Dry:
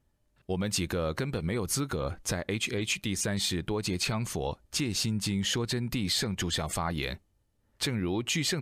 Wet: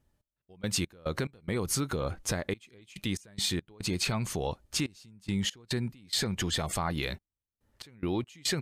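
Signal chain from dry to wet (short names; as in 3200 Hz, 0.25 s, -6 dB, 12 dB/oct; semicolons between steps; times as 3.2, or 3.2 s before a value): step gate "x..x.x.xxxx" 71 bpm -24 dB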